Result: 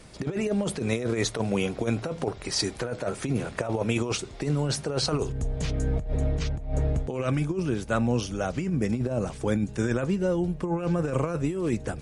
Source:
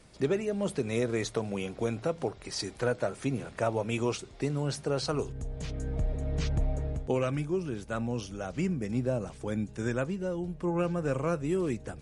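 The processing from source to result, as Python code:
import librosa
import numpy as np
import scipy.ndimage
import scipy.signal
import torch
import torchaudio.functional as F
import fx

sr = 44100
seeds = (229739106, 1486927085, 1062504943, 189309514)

y = fx.over_compress(x, sr, threshold_db=-31.0, ratio=-0.5)
y = F.gain(torch.from_numpy(y), 6.0).numpy()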